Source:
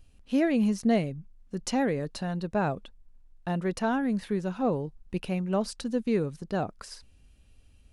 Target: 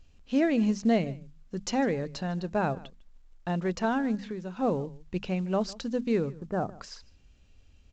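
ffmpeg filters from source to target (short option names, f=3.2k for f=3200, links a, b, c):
-filter_complex "[0:a]asplit=3[a][b][c];[a]afade=t=out:st=6.26:d=0.02[d];[b]lowpass=f=1.7k:w=0.5412,lowpass=f=1.7k:w=1.3066,afade=t=in:st=6.26:d=0.02,afade=t=out:st=6.72:d=0.02[e];[c]afade=t=in:st=6.72:d=0.02[f];[d][e][f]amix=inputs=3:normalize=0,bandreject=f=50:t=h:w=6,bandreject=f=100:t=h:w=6,bandreject=f=150:t=h:w=6,bandreject=f=200:t=h:w=6,bandreject=f=250:t=h:w=6,asettb=1/sr,asplit=3[g][h][i];[g]atrim=end=4.154[j];[h]atrim=start=4.15:end=4.57,asetpts=PTS-STARTPTS,afade=t=in:d=0.004:c=qsin,afade=t=out:st=0.416:d=0.004:c=qsin,acompressor=threshold=-36dB:ratio=2.5[k];[i]atrim=start=4.566[l];[j][k]acrossfade=d=0.004:c1=hsin:c2=qsin[m];[m][l]acrossfade=d=0.004:c1=qsin:c2=hsin,asplit=2[n][o];[o]adelay=151.6,volume=-21dB,highshelf=f=4k:g=-3.41[p];[n][p]amix=inputs=2:normalize=0" -ar 16000 -c:a pcm_mulaw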